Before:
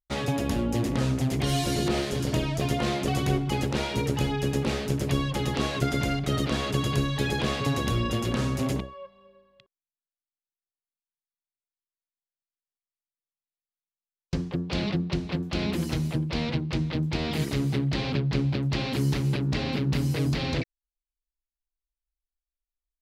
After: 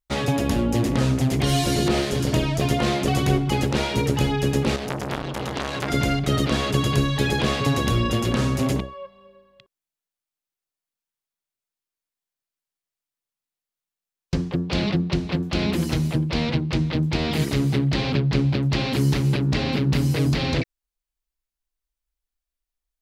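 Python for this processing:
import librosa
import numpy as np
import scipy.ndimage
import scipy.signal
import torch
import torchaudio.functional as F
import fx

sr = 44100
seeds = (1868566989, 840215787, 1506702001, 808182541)

y = fx.transformer_sat(x, sr, knee_hz=2300.0, at=(4.76, 5.9))
y = y * 10.0 ** (5.0 / 20.0)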